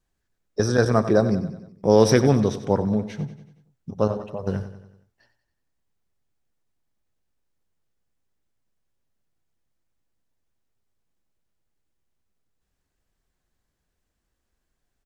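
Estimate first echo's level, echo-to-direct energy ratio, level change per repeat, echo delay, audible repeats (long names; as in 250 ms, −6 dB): −13.0 dB, −11.5 dB, −5.5 dB, 93 ms, 4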